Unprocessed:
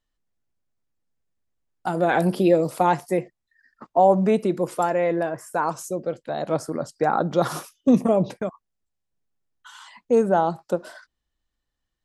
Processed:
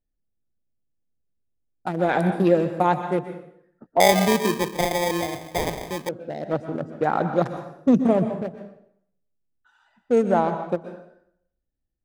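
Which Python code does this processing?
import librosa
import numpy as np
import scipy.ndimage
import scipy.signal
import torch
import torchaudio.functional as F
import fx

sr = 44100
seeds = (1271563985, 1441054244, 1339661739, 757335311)

y = fx.wiener(x, sr, points=41)
y = fx.rev_plate(y, sr, seeds[0], rt60_s=0.69, hf_ratio=0.85, predelay_ms=110, drr_db=8.0)
y = fx.sample_hold(y, sr, seeds[1], rate_hz=1400.0, jitter_pct=0, at=(4.0, 6.09))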